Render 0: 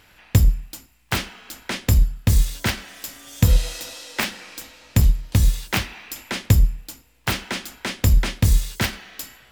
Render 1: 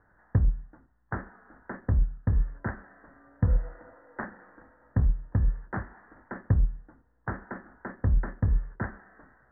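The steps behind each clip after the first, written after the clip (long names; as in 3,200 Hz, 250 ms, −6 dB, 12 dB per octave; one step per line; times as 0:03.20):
Butterworth low-pass 1,800 Hz 96 dB per octave
level −8 dB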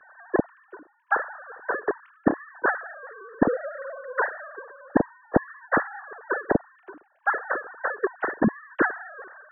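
three sine waves on the formant tracks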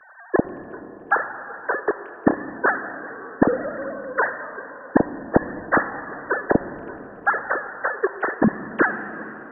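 convolution reverb RT60 4.2 s, pre-delay 50 ms, DRR 11.5 dB
level +3.5 dB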